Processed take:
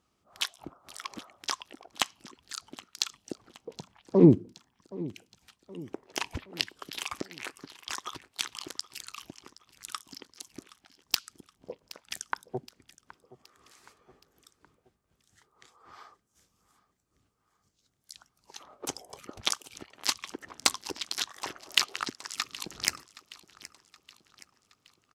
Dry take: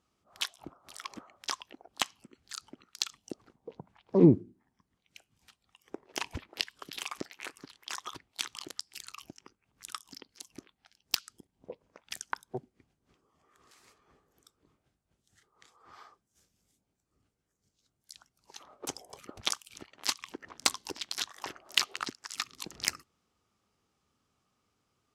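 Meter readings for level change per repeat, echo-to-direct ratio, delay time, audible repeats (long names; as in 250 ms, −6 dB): −6.0 dB, −18.0 dB, 771 ms, 3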